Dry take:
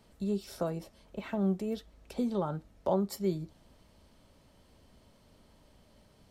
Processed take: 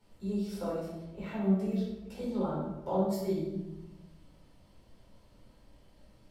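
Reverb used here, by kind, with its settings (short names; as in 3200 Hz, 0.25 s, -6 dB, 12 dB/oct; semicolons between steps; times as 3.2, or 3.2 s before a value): shoebox room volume 400 m³, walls mixed, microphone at 4.5 m; gain -12 dB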